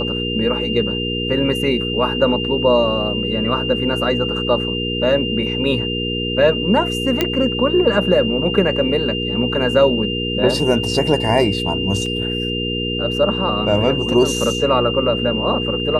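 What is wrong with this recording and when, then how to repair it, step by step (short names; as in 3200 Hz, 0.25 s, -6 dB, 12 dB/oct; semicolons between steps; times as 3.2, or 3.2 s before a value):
hum 60 Hz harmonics 8 -24 dBFS
tone 2800 Hz -23 dBFS
7.21 pop -2 dBFS
12.06 gap 2.8 ms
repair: de-click; de-hum 60 Hz, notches 8; notch 2800 Hz, Q 30; interpolate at 12.06, 2.8 ms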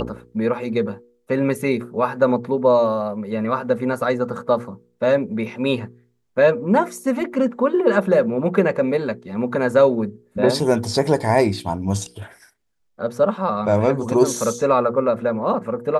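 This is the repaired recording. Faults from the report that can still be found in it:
none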